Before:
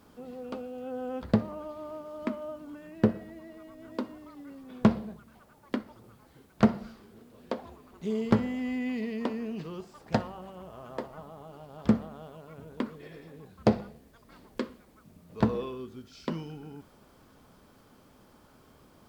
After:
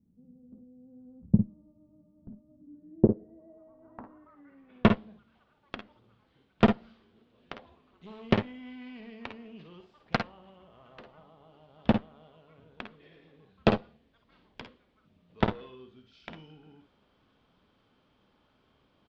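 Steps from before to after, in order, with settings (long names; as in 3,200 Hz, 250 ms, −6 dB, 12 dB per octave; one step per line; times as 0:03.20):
harmonic generator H 2 −13 dB, 3 −24 dB, 5 −44 dB, 7 −16 dB, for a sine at −7.5 dBFS
low-pass filter sweep 190 Hz → 3,300 Hz, 0:02.48–0:04.98
ambience of single reflections 52 ms −8.5 dB, 62 ms −13.5 dB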